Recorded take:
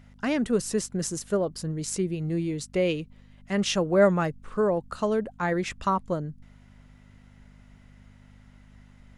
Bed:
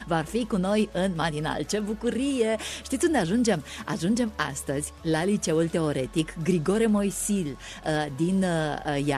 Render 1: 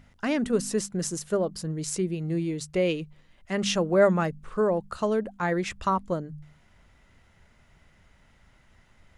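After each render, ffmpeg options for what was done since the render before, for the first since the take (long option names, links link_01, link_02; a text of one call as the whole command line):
ffmpeg -i in.wav -af "bandreject=frequency=50:width_type=h:width=4,bandreject=frequency=100:width_type=h:width=4,bandreject=frequency=150:width_type=h:width=4,bandreject=frequency=200:width_type=h:width=4,bandreject=frequency=250:width_type=h:width=4" out.wav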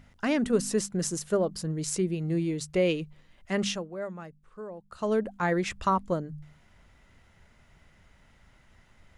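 ffmpeg -i in.wav -filter_complex "[0:a]asplit=3[link_01][link_02][link_03];[link_01]atrim=end=3.95,asetpts=PTS-STARTPTS,afade=type=out:start_time=3.61:duration=0.34:curve=qua:silence=0.149624[link_04];[link_02]atrim=start=3.95:end=4.79,asetpts=PTS-STARTPTS,volume=-16.5dB[link_05];[link_03]atrim=start=4.79,asetpts=PTS-STARTPTS,afade=type=in:duration=0.34:curve=qua:silence=0.149624[link_06];[link_04][link_05][link_06]concat=n=3:v=0:a=1" out.wav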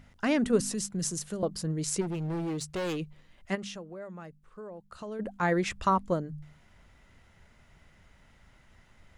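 ffmpeg -i in.wav -filter_complex "[0:a]asettb=1/sr,asplit=3[link_01][link_02][link_03];[link_01]atrim=end=0.604[link_04];[link_02]atrim=start=0.6:end=1.43,asetpts=PTS-STARTPTS,afade=type=in:duration=0.004:curve=qsin,afade=type=out:start_time=0.826:duration=0.004:curve=qsin,acrossover=split=210|3000[link_05][link_06][link_07];[link_06]acompressor=threshold=-39dB:ratio=6:attack=3.2:release=140:knee=2.83:detection=peak[link_08];[link_05][link_08][link_07]amix=inputs=3:normalize=0[link_09];[link_03]atrim=start=1.426[link_10];[link_04][link_09]acrossfade=duration=0.004:curve1=hsin:curve2=qsin[link_11];[link_11][link_10]acrossfade=duration=0.004:curve1=qsin:curve2=hsin,asplit=3[link_12][link_13][link_14];[link_12]afade=type=out:start_time=2:duration=0.02[link_15];[link_13]volume=30dB,asoftclip=hard,volume=-30dB,afade=type=in:start_time=2:duration=0.02,afade=type=out:start_time=2.97:duration=0.02[link_16];[link_14]afade=type=in:start_time=2.97:duration=0.02[link_17];[link_15][link_16][link_17]amix=inputs=3:normalize=0,asplit=3[link_18][link_19][link_20];[link_18]afade=type=out:start_time=3.54:duration=0.02[link_21];[link_19]acompressor=threshold=-40dB:ratio=3:attack=3.2:release=140:knee=1:detection=peak,afade=type=in:start_time=3.54:duration=0.02,afade=type=out:start_time=5.19:duration=0.02[link_22];[link_20]afade=type=in:start_time=5.19:duration=0.02[link_23];[link_21][link_22][link_23]amix=inputs=3:normalize=0" out.wav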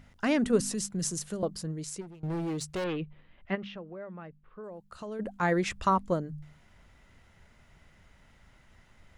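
ffmpeg -i in.wav -filter_complex "[0:a]asettb=1/sr,asplit=3[link_01][link_02][link_03];[link_01]atrim=end=2.844[link_04];[link_02]atrim=start=2.84:end=4.64,asetpts=PTS-STARTPTS,afade=type=in:duration=0.004:curve=qsin,afade=type=out:start_time=1.796:duration=0.004:curve=qsin,lowpass=frequency=3300:width=0.5412,lowpass=frequency=3300:width=1.3066[link_05];[link_03]atrim=start=4.636[link_06];[link_04][link_05]acrossfade=duration=0.004:curve1=hsin:curve2=qsin[link_07];[link_07][link_06]acrossfade=duration=0.004:curve1=qsin:curve2=hsin,asplit=2[link_08][link_09];[link_08]atrim=end=2.23,asetpts=PTS-STARTPTS,afade=type=out:start_time=1.35:duration=0.88:silence=0.0794328[link_10];[link_09]atrim=start=2.23,asetpts=PTS-STARTPTS,afade=type=in:duration=0.004:curve=hsin:silence=0.0794328[link_11];[link_10][link_11]concat=n=2:v=0:a=1" out.wav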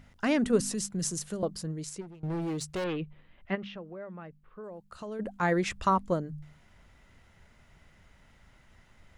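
ffmpeg -i in.wav -filter_complex "[0:a]asettb=1/sr,asplit=3[link_01][link_02][link_03];[link_01]atrim=end=1.894[link_04];[link_02]atrim=start=1.89:end=2.42,asetpts=PTS-STARTPTS,afade=type=in:duration=0.004:curve=qsin,afade=type=out:start_time=0.526:duration=0.004:curve=qsin,highshelf=frequency=5400:gain=-5[link_05];[link_03]atrim=start=2.416[link_06];[link_04][link_05]acrossfade=duration=0.004:curve1=hsin:curve2=qsin[link_07];[link_07][link_06]acrossfade=duration=0.004:curve1=qsin:curve2=hsin" out.wav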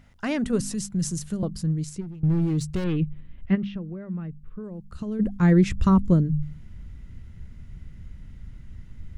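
ffmpeg -i in.wav -af "asubboost=boost=11.5:cutoff=210" out.wav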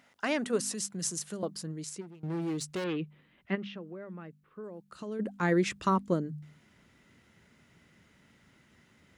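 ffmpeg -i in.wav -af "highpass=390" out.wav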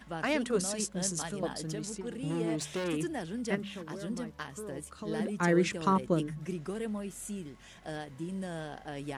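ffmpeg -i in.wav -i bed.wav -filter_complex "[1:a]volume=-13.5dB[link_01];[0:a][link_01]amix=inputs=2:normalize=0" out.wav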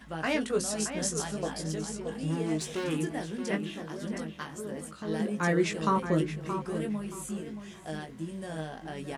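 ffmpeg -i in.wav -filter_complex "[0:a]asplit=2[link_01][link_02];[link_02]adelay=19,volume=-5dB[link_03];[link_01][link_03]amix=inputs=2:normalize=0,asplit=2[link_04][link_05];[link_05]adelay=624,lowpass=frequency=3100:poles=1,volume=-8.5dB,asplit=2[link_06][link_07];[link_07]adelay=624,lowpass=frequency=3100:poles=1,volume=0.26,asplit=2[link_08][link_09];[link_09]adelay=624,lowpass=frequency=3100:poles=1,volume=0.26[link_10];[link_04][link_06][link_08][link_10]amix=inputs=4:normalize=0" out.wav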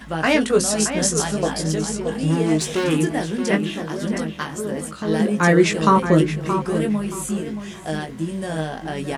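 ffmpeg -i in.wav -af "volume=11.5dB,alimiter=limit=-2dB:level=0:latency=1" out.wav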